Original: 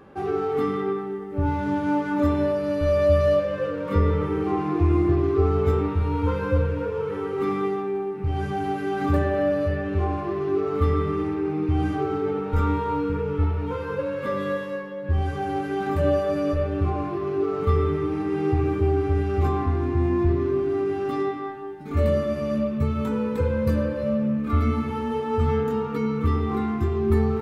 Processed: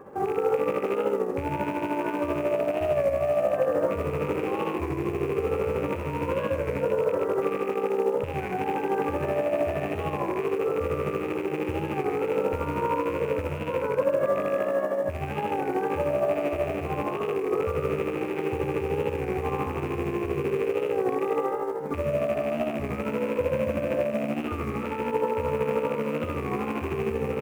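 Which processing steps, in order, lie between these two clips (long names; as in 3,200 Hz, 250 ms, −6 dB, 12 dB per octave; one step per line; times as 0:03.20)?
loose part that buzzes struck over −31 dBFS, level −16 dBFS
downward compressor, threshold −21 dBFS, peak gain reduction 7.5 dB
echo with shifted repeats 102 ms, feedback 44%, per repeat +62 Hz, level −5.5 dB
brickwall limiter −21 dBFS, peak gain reduction 10 dB
amplitude tremolo 13 Hz, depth 48%
floating-point word with a short mantissa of 2 bits
octave-band graphic EQ 125/250/500/1,000/2,000/4,000 Hz +5/+3/+12/+9/+4/−8 dB
wow of a warped record 33 1/3 rpm, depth 100 cents
level −5 dB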